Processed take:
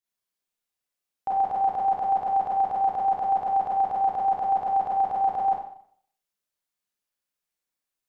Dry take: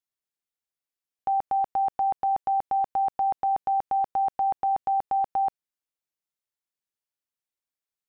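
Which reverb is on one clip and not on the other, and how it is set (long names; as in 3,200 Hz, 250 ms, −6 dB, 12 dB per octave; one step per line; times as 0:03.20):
four-comb reverb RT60 0.62 s, combs from 31 ms, DRR −6 dB
level −2 dB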